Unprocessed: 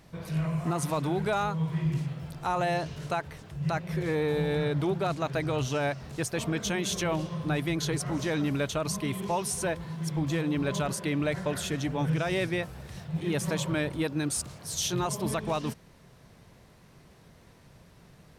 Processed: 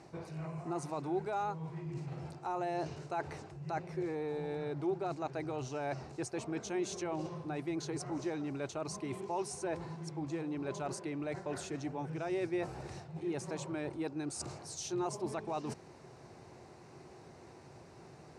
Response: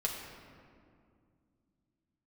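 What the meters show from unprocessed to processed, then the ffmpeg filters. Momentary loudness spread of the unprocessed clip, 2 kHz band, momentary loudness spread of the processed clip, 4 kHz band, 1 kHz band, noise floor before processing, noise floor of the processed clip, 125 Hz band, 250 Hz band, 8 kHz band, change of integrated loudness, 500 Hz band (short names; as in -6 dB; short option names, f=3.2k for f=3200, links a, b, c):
5 LU, -12.5 dB, 18 LU, -14.0 dB, -6.5 dB, -56 dBFS, -55 dBFS, -12.5 dB, -8.0 dB, -11.0 dB, -9.0 dB, -7.0 dB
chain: -af "areverse,acompressor=threshold=-39dB:ratio=6,areverse,highpass=100,equalizer=f=190:t=q:w=4:g=-7,equalizer=f=360:t=q:w=4:g=10,equalizer=f=790:t=q:w=4:g=8,equalizer=f=1.8k:t=q:w=4:g=-3,equalizer=f=3.3k:t=q:w=4:g=-10,lowpass=f=8.5k:w=0.5412,lowpass=f=8.5k:w=1.3066,volume=1dB"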